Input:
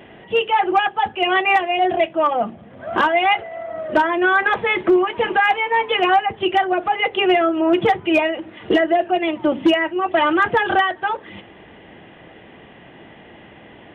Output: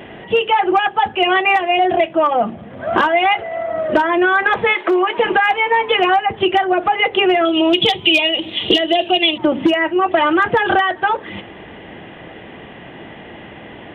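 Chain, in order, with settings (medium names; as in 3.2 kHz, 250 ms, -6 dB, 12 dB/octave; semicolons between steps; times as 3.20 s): 4.73–5.24 s: high-pass 840 Hz -> 220 Hz 12 dB/octave; 7.45–9.38 s: resonant high shelf 2.3 kHz +12.5 dB, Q 3; compression 5:1, threshold -19 dBFS, peak gain reduction 11.5 dB; trim +7.5 dB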